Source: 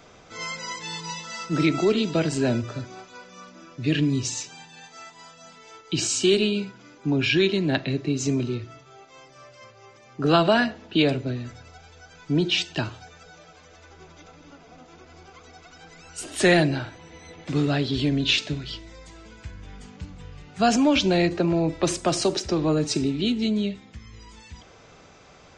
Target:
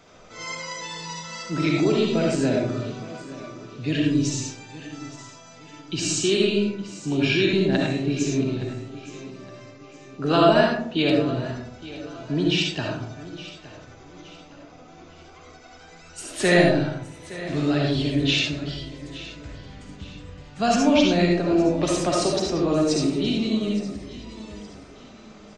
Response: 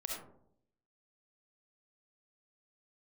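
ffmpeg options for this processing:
-filter_complex "[0:a]aecho=1:1:867|1734|2601:0.15|0.0569|0.0216[link_01];[1:a]atrim=start_sample=2205,asetrate=42336,aresample=44100[link_02];[link_01][link_02]afir=irnorm=-1:irlink=0"

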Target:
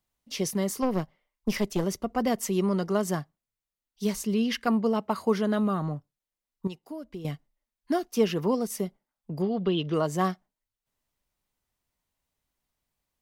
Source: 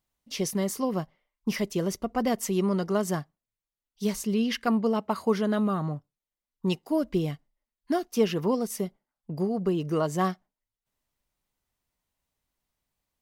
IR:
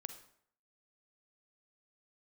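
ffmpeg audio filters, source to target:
-filter_complex "[0:a]asettb=1/sr,asplit=3[link_01][link_02][link_03];[link_01]atrim=end=0.824[link_04];[link_02]atrim=start=0.82:end=1.84,asetpts=PTS-STARTPTS,afade=type=in:duration=0.004:curve=qsin,afade=type=out:start_time=1.016:duration=0.004:curve=qsin,aeval=exprs='0.178*(cos(1*acos(clip(val(0)/0.178,-1,1)))-cos(1*PI/2))+0.0282*(cos(4*acos(clip(val(0)/0.178,-1,1)))-cos(4*PI/2))':channel_layout=same[link_05];[link_03]atrim=start=1.836[link_06];[link_04][link_05]acrossfade=duration=0.004:curve1=hsin:curve2=qsin[link_07];[link_07][link_06]acrossfade=duration=0.004:curve1=qsin:curve2=hsin,acrossover=split=120[link_08][link_09];[link_08]aeval=exprs='clip(val(0),-1,0.00631)':channel_layout=same[link_10];[link_10][link_09]amix=inputs=2:normalize=0,asettb=1/sr,asplit=3[link_11][link_12][link_13];[link_11]atrim=end=6.674[link_14];[link_12]atrim=start=6.67:end=7.25,asetpts=PTS-STARTPTS,afade=type=in:duration=0.004:curve=qsin,afade=type=out:start_time=0.576:duration=0.004:curve=qsin,acompressor=threshold=-42dB:ratio=2.5[link_15];[link_13]atrim=start=7.246[link_16];[link_14][link_15]acrossfade=duration=0.004:curve1=hsin:curve2=qsin[link_17];[link_17][link_16]acrossfade=duration=0.004:curve1=qsin:curve2=hsin,asettb=1/sr,asplit=3[link_18][link_19][link_20];[link_18]atrim=end=9.424[link_21];[link_19]atrim=start=9.42:end=9.94,asetpts=PTS-STARTPTS,afade=type=in:duration=0.004:curve=qsin,afade=type=out:start_time=0.516:duration=0.004:curve=qsin,lowpass=frequency=3400:width_type=q:width=8.2[link_22];[link_20]atrim=start=9.936[link_23];[link_21][link_22]acrossfade=duration=0.004:curve1=hsin:curve2=qsin[link_24];[link_24][link_23]acrossfade=duration=0.004:curve1=qsin:curve2=hsin"

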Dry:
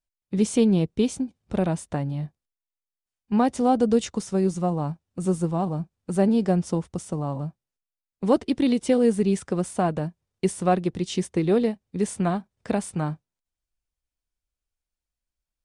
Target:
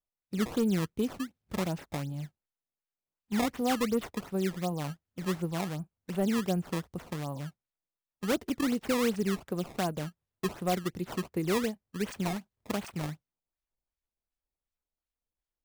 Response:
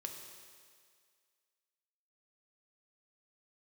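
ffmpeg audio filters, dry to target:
-af "acrusher=samples=17:mix=1:aa=0.000001:lfo=1:lforange=27.2:lforate=2.7,volume=13.5dB,asoftclip=hard,volume=-13.5dB,volume=-8dB"

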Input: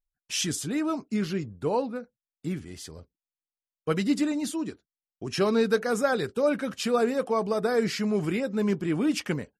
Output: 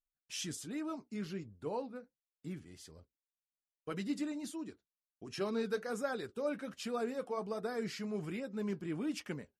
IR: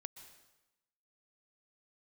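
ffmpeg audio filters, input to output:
-af "flanger=delay=2.9:depth=3.9:regen=-73:speed=1.3:shape=sinusoidal,volume=-8dB"

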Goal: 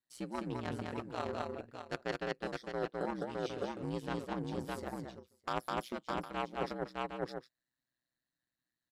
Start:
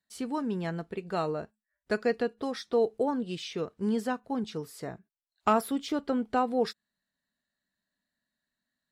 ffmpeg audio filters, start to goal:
ffmpeg -i in.wav -af "aeval=exprs='0.2*(cos(1*acos(clip(val(0)/0.2,-1,1)))-cos(1*PI/2))+0.0562*(cos(3*acos(clip(val(0)/0.2,-1,1)))-cos(3*PI/2))':channel_layout=same,aecho=1:1:208|611|759:0.531|0.422|0.112,aeval=exprs='val(0)*sin(2*PI*62*n/s)':channel_layout=same,areverse,acompressor=threshold=-45dB:ratio=6,areverse,volume=11.5dB" out.wav

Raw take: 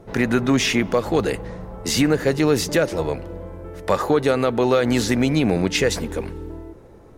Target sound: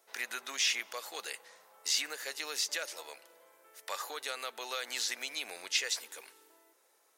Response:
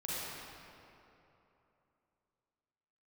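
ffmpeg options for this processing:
-filter_complex "[0:a]acrossover=split=6300[link_01][link_02];[link_02]acompressor=threshold=-46dB:ratio=4:attack=1:release=60[link_03];[link_01][link_03]amix=inputs=2:normalize=0,highpass=520,aderivative"

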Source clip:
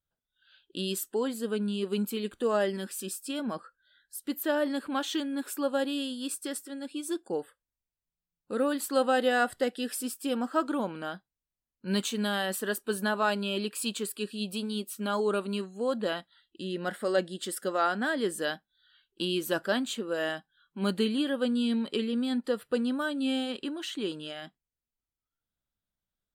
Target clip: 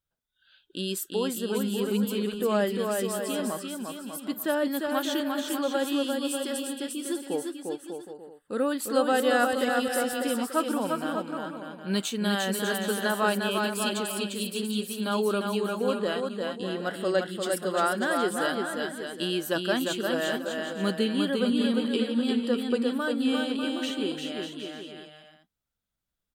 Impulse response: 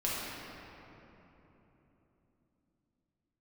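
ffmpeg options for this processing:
-af "aecho=1:1:350|595|766.5|886.6|970.6:0.631|0.398|0.251|0.158|0.1,volume=1dB"

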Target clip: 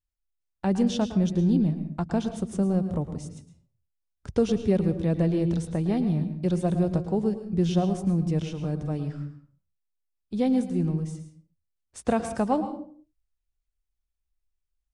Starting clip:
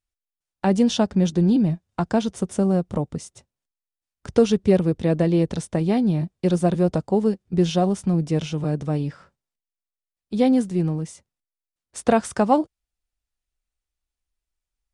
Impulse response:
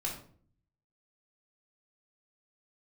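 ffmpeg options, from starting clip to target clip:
-filter_complex "[0:a]lowshelf=frequency=140:gain=10.5,asplit=2[link_01][link_02];[1:a]atrim=start_sample=2205,afade=type=out:start_time=0.43:duration=0.01,atrim=end_sample=19404,adelay=109[link_03];[link_02][link_03]afir=irnorm=-1:irlink=0,volume=-12dB[link_04];[link_01][link_04]amix=inputs=2:normalize=0,volume=-8dB"

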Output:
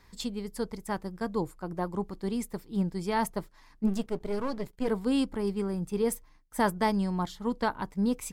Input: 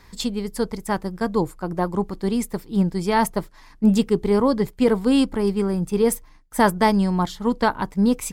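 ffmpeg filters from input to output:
ffmpeg -i in.wav -filter_complex "[0:a]asplit=3[link_01][link_02][link_03];[link_01]afade=type=out:start_time=3.86:duration=0.02[link_04];[link_02]aeval=exprs='if(lt(val(0),0),0.251*val(0),val(0))':channel_layout=same,afade=type=in:start_time=3.86:duration=0.02,afade=type=out:start_time=4.87:duration=0.02[link_05];[link_03]afade=type=in:start_time=4.87:duration=0.02[link_06];[link_04][link_05][link_06]amix=inputs=3:normalize=0,volume=-9dB" out.wav

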